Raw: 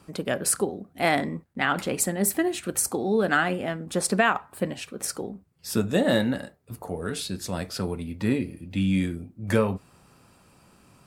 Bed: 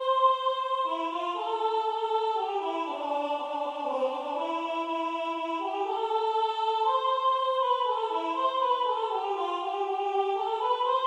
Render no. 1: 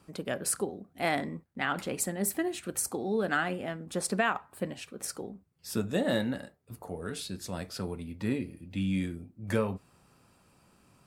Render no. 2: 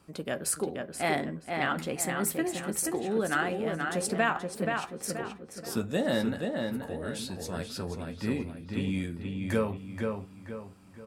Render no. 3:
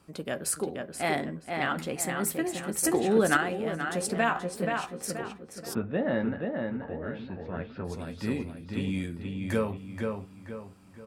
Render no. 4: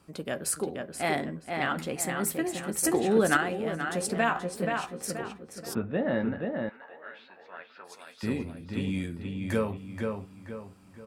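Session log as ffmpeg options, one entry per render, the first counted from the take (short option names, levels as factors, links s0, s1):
-af "volume=0.473"
-filter_complex "[0:a]asplit=2[s0][s1];[s1]adelay=13,volume=0.282[s2];[s0][s2]amix=inputs=2:normalize=0,asplit=2[s3][s4];[s4]adelay=479,lowpass=f=3600:p=1,volume=0.631,asplit=2[s5][s6];[s6]adelay=479,lowpass=f=3600:p=1,volume=0.4,asplit=2[s7][s8];[s8]adelay=479,lowpass=f=3600:p=1,volume=0.4,asplit=2[s9][s10];[s10]adelay=479,lowpass=f=3600:p=1,volume=0.4,asplit=2[s11][s12];[s12]adelay=479,lowpass=f=3600:p=1,volume=0.4[s13];[s3][s5][s7][s9][s11][s13]amix=inputs=6:normalize=0"
-filter_complex "[0:a]asettb=1/sr,asplit=3[s0][s1][s2];[s0]atrim=end=2.834[s3];[s1]atrim=start=2.83:end=3.37,asetpts=PTS-STARTPTS,afade=t=in:d=0.004:c=qsin,afade=t=out:st=0.536:d=0.004:c=qsin,acontrast=51[s4];[s2]atrim=start=3.366[s5];[s3][s4]acrossfade=d=0.004:c1=hsin:c2=qsin[s6];[s6][s5]acrossfade=d=0.004:c1=qsin:c2=hsin,asettb=1/sr,asplit=3[s7][s8][s9];[s7]atrim=end=4.154[s10];[s8]atrim=start=4.15:end=5.06,asetpts=PTS-STARTPTS,afade=t=in:d=0.004:c=qsin,afade=t=out:st=0.906:d=0.004:c=qsin,asplit=2[s11][s12];[s12]adelay=17,volume=0.447[s13];[s11][s13]amix=inputs=2:normalize=0,atrim=end_sample=40131[s14];[s9]atrim=start=5.056[s15];[s10][s14]acrossfade=d=0.004:c1=hsin:c2=qsin[s16];[s16][s15]acrossfade=d=0.004:c1=qsin:c2=hsin,asplit=3[s17][s18][s19];[s17]afade=t=out:st=5.73:d=0.02[s20];[s18]lowpass=f=2400:w=0.5412,lowpass=f=2400:w=1.3066,afade=t=in:st=5.73:d=0.02,afade=t=out:st=7.84:d=0.02[s21];[s19]afade=t=in:st=7.84:d=0.02[s22];[s20][s21][s22]amix=inputs=3:normalize=0"
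-filter_complex "[0:a]asettb=1/sr,asplit=3[s0][s1][s2];[s0]atrim=end=6.694[s3];[s1]atrim=start=6.69:end=8.23,asetpts=PTS-STARTPTS,afade=t=in:d=0.004:c=qsin,afade=t=out:st=1.536:d=0.004:c=qsin,highpass=1000[s4];[s2]atrim=start=8.226[s5];[s3][s4]acrossfade=d=0.004:c1=hsin:c2=qsin[s6];[s6][s5]acrossfade=d=0.004:c1=qsin:c2=hsin"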